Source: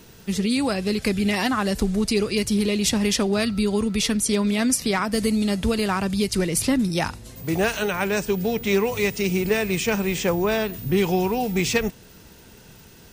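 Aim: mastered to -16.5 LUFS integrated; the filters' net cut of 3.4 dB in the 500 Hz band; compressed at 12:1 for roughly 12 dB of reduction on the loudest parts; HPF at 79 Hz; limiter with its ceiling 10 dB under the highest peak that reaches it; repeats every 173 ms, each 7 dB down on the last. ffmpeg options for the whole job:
-af "highpass=79,equalizer=f=500:t=o:g=-4.5,acompressor=threshold=0.0316:ratio=12,alimiter=level_in=1.58:limit=0.0631:level=0:latency=1,volume=0.631,aecho=1:1:173|346|519|692|865:0.447|0.201|0.0905|0.0407|0.0183,volume=8.91"

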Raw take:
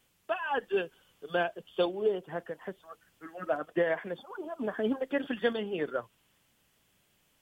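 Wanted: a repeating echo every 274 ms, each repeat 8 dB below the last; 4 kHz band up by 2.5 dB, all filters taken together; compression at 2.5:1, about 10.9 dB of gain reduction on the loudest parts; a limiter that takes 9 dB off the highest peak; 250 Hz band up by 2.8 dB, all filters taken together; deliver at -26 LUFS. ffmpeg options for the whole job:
-af "equalizer=f=250:t=o:g=3.5,equalizer=f=4000:t=o:g=3.5,acompressor=threshold=0.0112:ratio=2.5,alimiter=level_in=2.99:limit=0.0631:level=0:latency=1,volume=0.335,aecho=1:1:274|548|822|1096|1370:0.398|0.159|0.0637|0.0255|0.0102,volume=7.5"

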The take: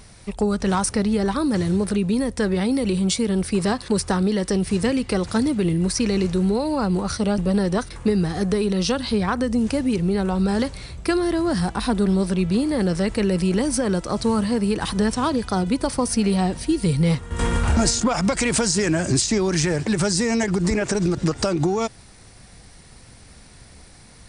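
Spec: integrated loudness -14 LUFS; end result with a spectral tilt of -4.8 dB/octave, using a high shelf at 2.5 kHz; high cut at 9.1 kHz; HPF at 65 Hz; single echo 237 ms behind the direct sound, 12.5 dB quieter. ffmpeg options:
-af "highpass=65,lowpass=9100,highshelf=f=2500:g=3,aecho=1:1:237:0.237,volume=2.24"

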